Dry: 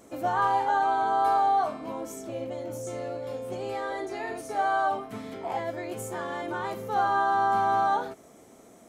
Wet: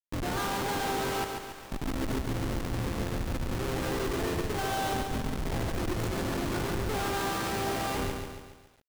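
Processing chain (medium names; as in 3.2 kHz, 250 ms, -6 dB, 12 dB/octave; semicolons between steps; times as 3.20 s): high-order bell 780 Hz -9.5 dB 1.3 oct; Schmitt trigger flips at -34.5 dBFS; delay 198 ms -22 dB; 1.24–1.72 s: integer overflow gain 47.5 dB; bit-crushed delay 140 ms, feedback 55%, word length 10-bit, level -5 dB; trim +3 dB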